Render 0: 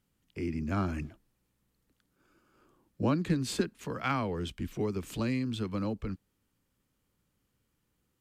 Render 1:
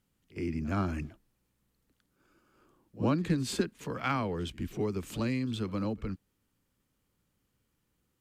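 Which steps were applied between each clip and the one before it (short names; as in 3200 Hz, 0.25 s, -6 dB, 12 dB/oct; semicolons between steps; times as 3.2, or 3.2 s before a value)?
pre-echo 64 ms -19.5 dB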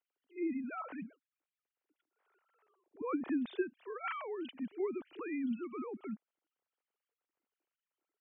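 sine-wave speech; gain -6.5 dB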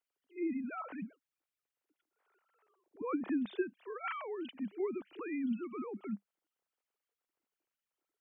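dynamic EQ 200 Hz, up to +6 dB, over -57 dBFS, Q 5.7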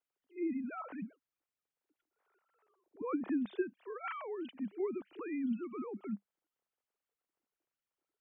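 high shelf 2400 Hz -7 dB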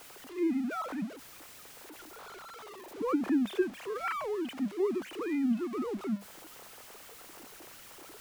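zero-crossing step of -47 dBFS; gain +5.5 dB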